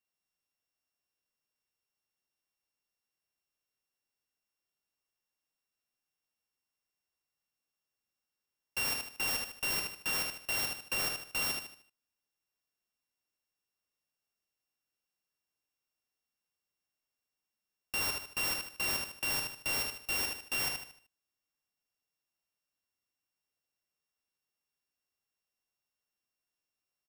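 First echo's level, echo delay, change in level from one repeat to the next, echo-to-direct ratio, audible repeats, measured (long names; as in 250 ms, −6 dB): −4.0 dB, 76 ms, −8.5 dB, −3.5 dB, 4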